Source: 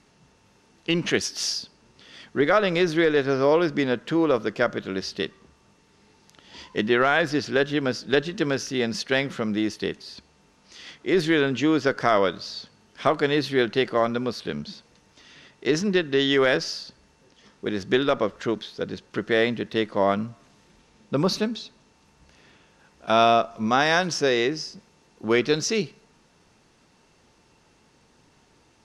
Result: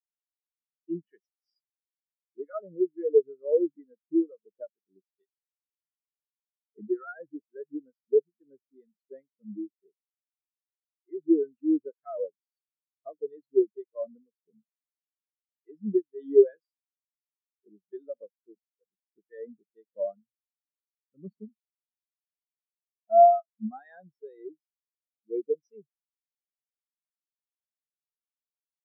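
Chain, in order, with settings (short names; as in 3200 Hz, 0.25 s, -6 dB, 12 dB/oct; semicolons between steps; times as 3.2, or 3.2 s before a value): harmonic tremolo 2.2 Hz, depth 50%, crossover 990 Hz; spectral expander 4:1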